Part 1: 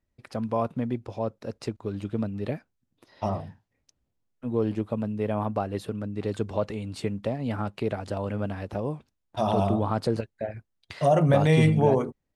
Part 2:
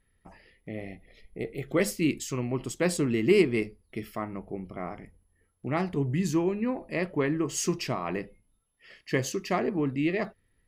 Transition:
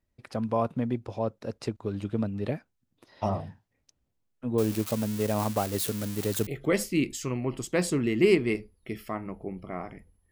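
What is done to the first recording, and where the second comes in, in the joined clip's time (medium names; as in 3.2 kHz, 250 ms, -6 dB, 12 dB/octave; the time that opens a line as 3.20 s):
part 1
4.58–6.47 s: zero-crossing glitches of -23.5 dBFS
6.47 s: go over to part 2 from 1.54 s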